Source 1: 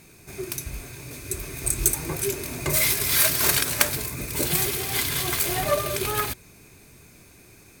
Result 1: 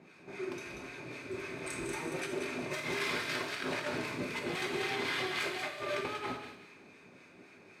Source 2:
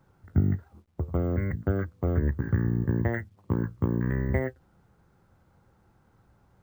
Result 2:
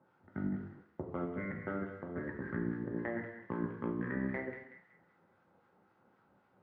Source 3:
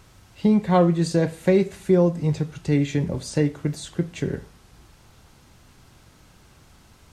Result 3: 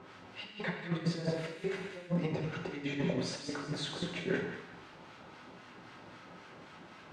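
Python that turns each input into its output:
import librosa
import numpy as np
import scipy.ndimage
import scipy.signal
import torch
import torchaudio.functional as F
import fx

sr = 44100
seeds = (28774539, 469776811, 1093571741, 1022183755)

y = fx.bandpass_edges(x, sr, low_hz=240.0, high_hz=2600.0)
y = fx.harmonic_tremolo(y, sr, hz=3.8, depth_pct=70, crossover_hz=1000.0)
y = fx.over_compress(y, sr, threshold_db=-36.0, ratio=-0.5)
y = fx.echo_wet_highpass(y, sr, ms=187, feedback_pct=32, hz=1900.0, wet_db=-5.5)
y = fx.rev_gated(y, sr, seeds[0], gate_ms=290, shape='falling', drr_db=1.0)
y = y * librosa.db_to_amplitude(-2.5)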